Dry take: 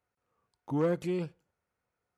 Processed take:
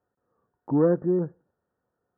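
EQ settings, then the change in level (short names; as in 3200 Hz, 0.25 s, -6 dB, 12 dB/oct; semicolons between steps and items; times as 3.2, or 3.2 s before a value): brick-wall FIR low-pass 1900 Hz; bell 310 Hz +10 dB 2.9 oct; -1.0 dB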